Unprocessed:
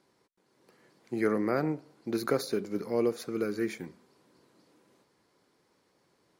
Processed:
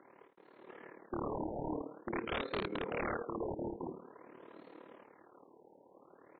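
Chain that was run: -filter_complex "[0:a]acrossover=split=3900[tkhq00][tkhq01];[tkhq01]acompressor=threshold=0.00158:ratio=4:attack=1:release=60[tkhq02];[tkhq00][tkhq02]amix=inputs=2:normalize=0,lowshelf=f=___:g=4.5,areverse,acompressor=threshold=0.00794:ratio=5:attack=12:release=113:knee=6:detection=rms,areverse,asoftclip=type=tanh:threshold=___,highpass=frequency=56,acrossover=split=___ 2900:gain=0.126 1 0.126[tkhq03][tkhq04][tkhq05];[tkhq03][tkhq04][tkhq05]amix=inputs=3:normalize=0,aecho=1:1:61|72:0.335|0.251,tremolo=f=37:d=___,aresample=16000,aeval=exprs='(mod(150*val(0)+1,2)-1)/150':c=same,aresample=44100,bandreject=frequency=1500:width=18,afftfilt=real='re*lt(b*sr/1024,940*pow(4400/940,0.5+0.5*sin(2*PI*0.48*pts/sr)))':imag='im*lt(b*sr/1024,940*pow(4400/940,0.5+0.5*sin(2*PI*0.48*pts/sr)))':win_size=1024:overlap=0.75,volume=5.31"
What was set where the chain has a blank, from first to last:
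210, 0.0188, 270, 0.788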